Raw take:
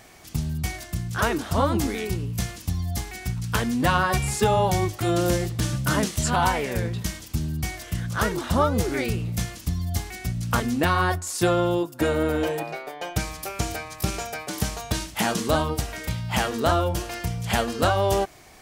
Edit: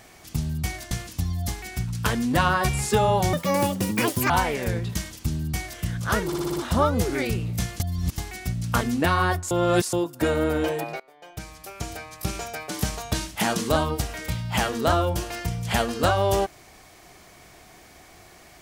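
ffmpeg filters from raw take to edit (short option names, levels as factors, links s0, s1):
-filter_complex "[0:a]asplit=14[s0][s1][s2][s3][s4][s5][s6][s7][s8][s9][s10][s11][s12][s13];[s0]atrim=end=0.912[s14];[s1]atrim=start=2.398:end=4.824[s15];[s2]atrim=start=4.82:end=6.39,asetpts=PTS-STARTPTS,asetrate=71442,aresample=44100[s16];[s3]atrim=start=6.386:end=8.412[s17];[s4]atrim=start=8.348:end=8.412[s18];[s5]atrim=start=8.348:end=8.412[s19];[s6]atrim=start=8.348:end=8.412[s20];[s7]atrim=start=8.348:end=8.412[s21];[s8]atrim=start=8.348:end=9.592[s22];[s9]atrim=start=9.588:end=9.972,asetpts=PTS-STARTPTS,areverse[s23];[s10]atrim=start=9.968:end=11.302[s24];[s11]atrim=start=11.298:end=11.722,asetpts=PTS-STARTPTS,areverse[s25];[s12]atrim=start=11.718:end=12.79,asetpts=PTS-STARTPTS,afade=t=out:st=1.068:d=0.004:c=hsin:silence=0.0841395[s26];[s13]atrim=start=12.79,asetpts=PTS-STARTPTS,afade=t=in:d=1.79:silence=0.0841395[s27];[s14][s15]acrossfade=d=0.004:c1=hsin:c2=hsin[s28];[s28][s16]acrossfade=d=0.004:c1=hsin:c2=hsin[s29];[s29][s17]acrossfade=d=0.004:c1=hsin:c2=hsin[s30];[s30][s18]acrossfade=d=0.004:c1=hsin:c2=hsin[s31];[s31][s19]acrossfade=d=0.004:c1=hsin:c2=hsin[s32];[s32][s20]acrossfade=d=0.004:c1=hsin:c2=hsin[s33];[s33][s21]acrossfade=d=0.004:c1=hsin:c2=hsin[s34];[s34][s22]acrossfade=d=0.004:c1=hsin:c2=hsin[s35];[s35][s23]acrossfade=d=0.004:c1=hsin:c2=hsin[s36];[s36][s24]acrossfade=d=0.004:c1=hsin:c2=hsin[s37];[s37][s25]acrossfade=d=0.004:c1=hsin:c2=hsin[s38];[s26][s27]concat=n=2:v=0:a=1[s39];[s38][s39]acrossfade=d=0.004:c1=hsin:c2=hsin"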